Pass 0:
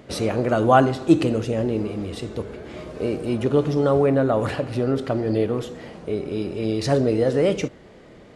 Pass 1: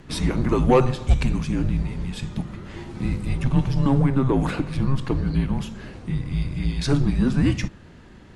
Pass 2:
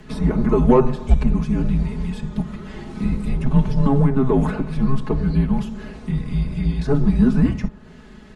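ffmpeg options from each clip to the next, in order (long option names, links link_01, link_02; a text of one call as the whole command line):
ffmpeg -i in.wav -af "acontrast=64,afreqshift=-270,volume=-5.5dB" out.wav
ffmpeg -i in.wav -filter_complex "[0:a]aecho=1:1:4.7:0.81,acrossover=split=100|1400[link_01][link_02][link_03];[link_03]acompressor=threshold=-46dB:ratio=6[link_04];[link_01][link_02][link_04]amix=inputs=3:normalize=0,volume=1.5dB" out.wav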